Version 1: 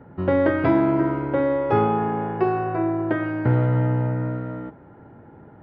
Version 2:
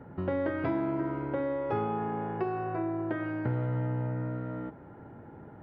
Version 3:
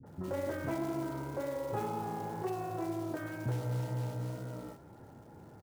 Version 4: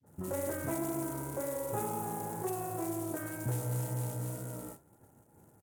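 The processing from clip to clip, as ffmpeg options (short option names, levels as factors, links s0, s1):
-af "acompressor=threshold=0.0224:ratio=2,volume=0.794"
-filter_complex "[0:a]flanger=delay=7.6:depth=9.4:regen=-38:speed=2:shape=triangular,acrusher=bits=5:mode=log:mix=0:aa=0.000001,acrossover=split=290|1600[s0][s1][s2];[s1]adelay=30[s3];[s2]adelay=60[s4];[s0][s3][s4]amix=inputs=3:normalize=0"
-af "agate=range=0.0224:threshold=0.00562:ratio=3:detection=peak,highshelf=f=6400:t=q:w=1.5:g=13.5" -ar 48000 -c:a sbc -b:a 128k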